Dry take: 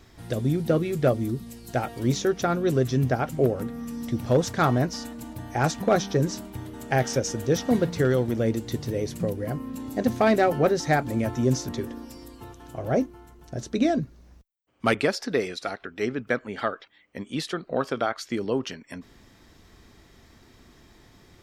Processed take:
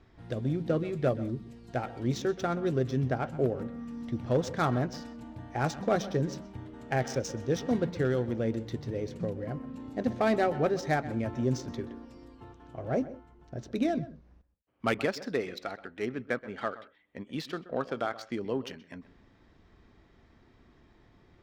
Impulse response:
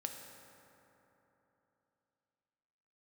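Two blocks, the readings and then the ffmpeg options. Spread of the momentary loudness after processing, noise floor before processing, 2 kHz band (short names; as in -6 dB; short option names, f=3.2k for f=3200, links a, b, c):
15 LU, -55 dBFS, -6.5 dB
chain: -filter_complex "[0:a]asplit=2[a][b];[1:a]atrim=start_sample=2205,atrim=end_sample=3528,adelay=127[c];[b][c]afir=irnorm=-1:irlink=0,volume=-13.5dB[d];[a][d]amix=inputs=2:normalize=0,adynamicsmooth=sensitivity=5:basefreq=3.1k,volume=-6dB"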